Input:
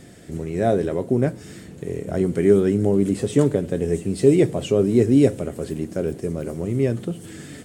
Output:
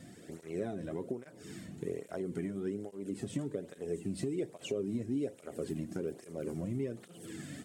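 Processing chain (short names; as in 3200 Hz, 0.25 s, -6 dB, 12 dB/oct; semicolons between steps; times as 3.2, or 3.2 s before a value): compressor 10:1, threshold -25 dBFS, peak gain reduction 16 dB; tape flanging out of phase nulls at 1.2 Hz, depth 2.6 ms; gain -5 dB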